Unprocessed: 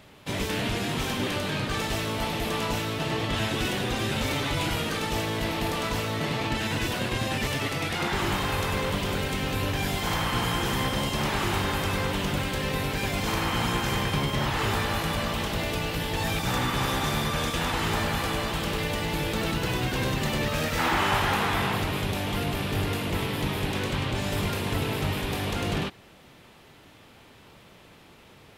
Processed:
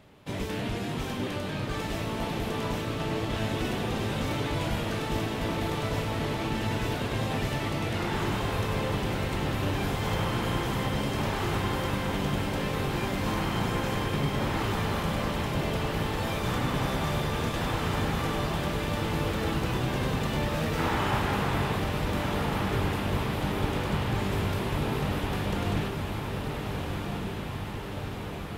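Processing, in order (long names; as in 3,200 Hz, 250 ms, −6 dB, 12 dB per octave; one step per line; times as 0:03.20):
tilt shelving filter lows +3.5 dB, about 1,300 Hz
on a send: feedback delay with all-pass diffusion 1,444 ms, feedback 71%, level −4.5 dB
on the sum: level −5.5 dB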